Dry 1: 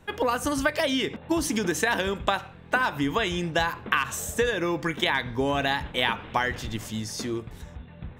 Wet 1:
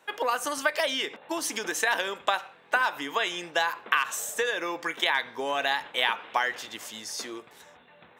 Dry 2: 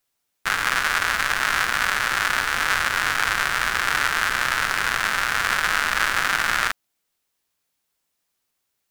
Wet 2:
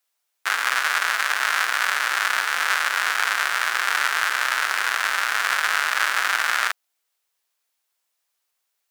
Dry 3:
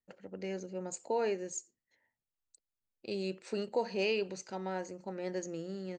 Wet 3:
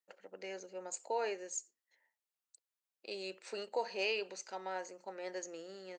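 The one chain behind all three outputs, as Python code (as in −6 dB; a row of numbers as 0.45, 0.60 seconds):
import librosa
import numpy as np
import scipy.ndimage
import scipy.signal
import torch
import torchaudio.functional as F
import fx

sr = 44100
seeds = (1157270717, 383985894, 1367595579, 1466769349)

y = scipy.signal.sosfilt(scipy.signal.butter(2, 560.0, 'highpass', fs=sr, output='sos'), x)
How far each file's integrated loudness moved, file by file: −1.5, 0.0, −4.0 LU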